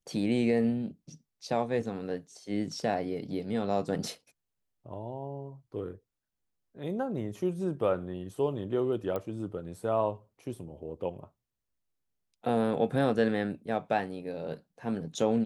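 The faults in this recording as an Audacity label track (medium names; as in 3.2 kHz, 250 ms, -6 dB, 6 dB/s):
9.160000	9.160000	pop -21 dBFS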